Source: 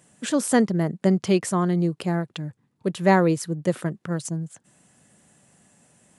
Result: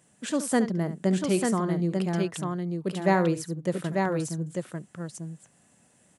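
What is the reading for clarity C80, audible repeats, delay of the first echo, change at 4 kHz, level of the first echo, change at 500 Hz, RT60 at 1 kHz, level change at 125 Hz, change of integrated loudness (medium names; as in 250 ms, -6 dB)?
no reverb, 2, 70 ms, -3.5 dB, -12.5 dB, -3.5 dB, no reverb, -3.5 dB, -4.0 dB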